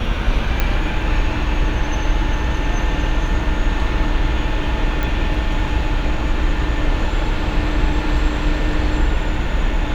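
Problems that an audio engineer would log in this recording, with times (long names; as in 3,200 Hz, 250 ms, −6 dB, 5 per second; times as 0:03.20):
0:00.60: click −5 dBFS
0:05.03: click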